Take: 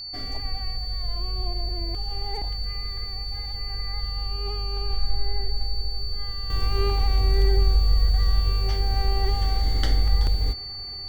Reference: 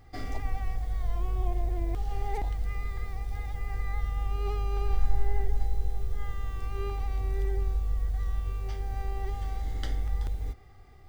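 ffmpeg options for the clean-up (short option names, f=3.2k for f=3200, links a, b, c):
-af "bandreject=f=4.5k:w=30,asetnsamples=n=441:p=0,asendcmd='6.5 volume volume -9.5dB',volume=0dB"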